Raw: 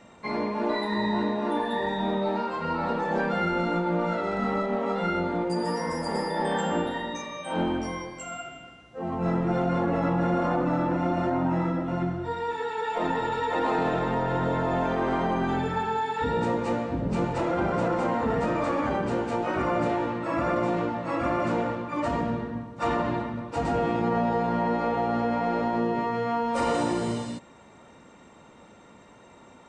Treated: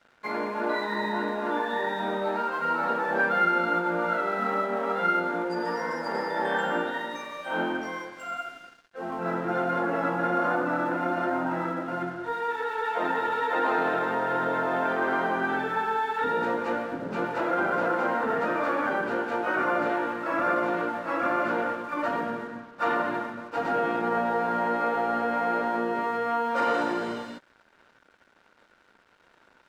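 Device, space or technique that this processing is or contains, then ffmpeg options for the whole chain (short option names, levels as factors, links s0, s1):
pocket radio on a weak battery: -af "highpass=290,lowpass=4100,aeval=exprs='sgn(val(0))*max(abs(val(0))-0.00251,0)':c=same,equalizer=f=1500:t=o:w=0.31:g=11.5"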